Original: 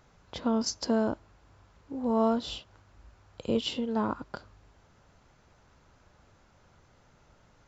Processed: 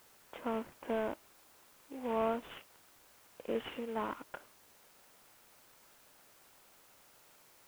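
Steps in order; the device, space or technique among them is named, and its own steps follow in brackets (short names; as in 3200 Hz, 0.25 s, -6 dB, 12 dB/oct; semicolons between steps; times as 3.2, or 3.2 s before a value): army field radio (BPF 340–3200 Hz; CVSD 16 kbps; white noise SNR 22 dB); gain -4 dB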